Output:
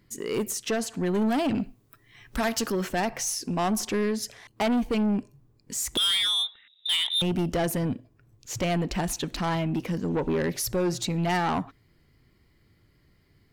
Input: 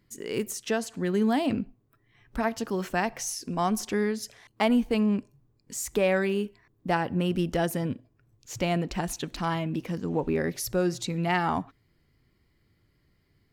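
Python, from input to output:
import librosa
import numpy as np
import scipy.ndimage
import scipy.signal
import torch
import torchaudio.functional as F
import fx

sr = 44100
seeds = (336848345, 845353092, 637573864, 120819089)

y = fx.high_shelf(x, sr, hz=2100.0, db=11.0, at=(1.55, 2.72))
y = fx.freq_invert(y, sr, carrier_hz=3800, at=(5.97, 7.22))
y = 10.0 ** (-26.0 / 20.0) * np.tanh(y / 10.0 ** (-26.0 / 20.0))
y = y * librosa.db_to_amplitude(5.0)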